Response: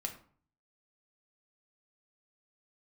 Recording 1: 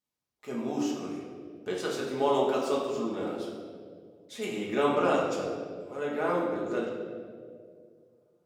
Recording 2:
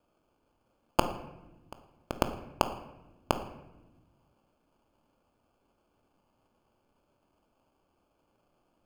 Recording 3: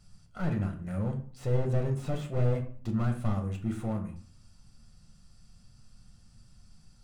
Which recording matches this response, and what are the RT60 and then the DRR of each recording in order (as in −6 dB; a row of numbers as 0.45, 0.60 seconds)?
3; 2.2 s, non-exponential decay, 0.50 s; −4.5, 7.0, 3.5 decibels